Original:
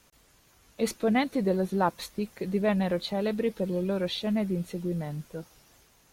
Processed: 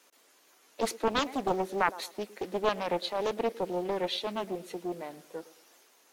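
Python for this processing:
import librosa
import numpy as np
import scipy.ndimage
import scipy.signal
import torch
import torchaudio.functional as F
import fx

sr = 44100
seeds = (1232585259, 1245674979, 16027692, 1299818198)

p1 = scipy.signal.sosfilt(scipy.signal.butter(4, 300.0, 'highpass', fs=sr, output='sos'), x)
p2 = p1 + fx.echo_filtered(p1, sr, ms=111, feedback_pct=37, hz=2000.0, wet_db=-18, dry=0)
y = fx.doppler_dist(p2, sr, depth_ms=0.71)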